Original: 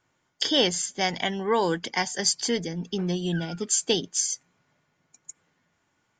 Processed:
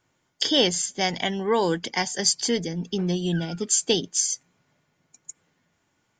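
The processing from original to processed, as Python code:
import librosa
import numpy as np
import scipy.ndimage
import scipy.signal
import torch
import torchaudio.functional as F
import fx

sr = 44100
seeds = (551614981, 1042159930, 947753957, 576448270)

y = fx.peak_eq(x, sr, hz=1300.0, db=-3.5, octaves=1.7)
y = y * librosa.db_to_amplitude(2.5)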